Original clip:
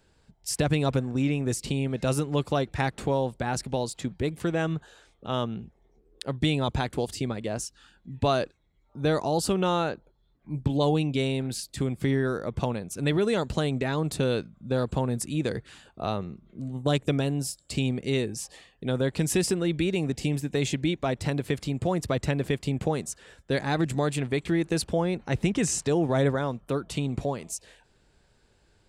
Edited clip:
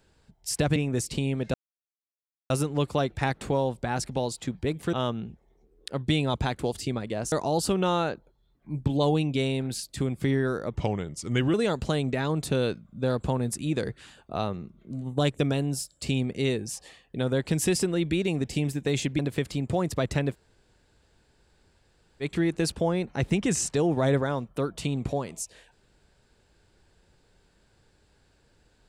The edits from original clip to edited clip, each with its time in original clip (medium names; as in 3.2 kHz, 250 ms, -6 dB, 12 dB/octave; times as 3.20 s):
0.76–1.29 s: delete
2.07 s: insert silence 0.96 s
4.50–5.27 s: delete
7.66–9.12 s: delete
12.55–13.22 s: speed 85%
20.87–21.31 s: delete
22.45–24.35 s: room tone, crossfade 0.06 s